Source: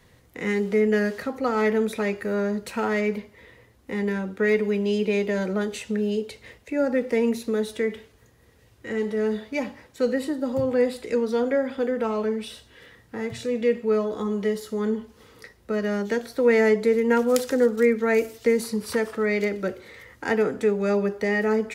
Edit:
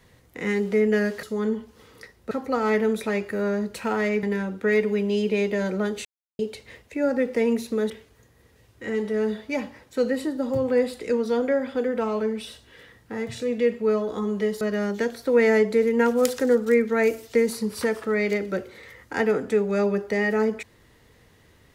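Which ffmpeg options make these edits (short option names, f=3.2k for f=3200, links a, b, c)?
-filter_complex "[0:a]asplit=8[a][b][c][d][e][f][g][h];[a]atrim=end=1.232[i];[b]atrim=start=14.638:end=15.722[j];[c]atrim=start=1.228:end=3.152[k];[d]atrim=start=3.988:end=5.81,asetpts=PTS-STARTPTS,afade=t=out:st=1.818:d=0.004:c=hsin[l];[e]atrim=start=5.81:end=6.15,asetpts=PTS-STARTPTS,volume=0[m];[f]atrim=start=6.15:end=7.662,asetpts=PTS-STARTPTS,afade=t=in:d=0.004:c=hsin[n];[g]atrim=start=7.928:end=14.642[o];[h]atrim=start=15.718[p];[i][j]acrossfade=d=0.004:c1=hsin:c2=hsin[q];[q][k]acrossfade=d=0.004:c1=hsin:c2=hsin[r];[l][m][n]concat=n=3:v=0:a=1[s];[r][s]acrossfade=d=0.004:c1=hsin:c2=hsin[t];[t][o]acrossfade=d=0.004:c1=hsin:c2=hsin[u];[u][p]acrossfade=d=0.004:c1=hsin:c2=hsin"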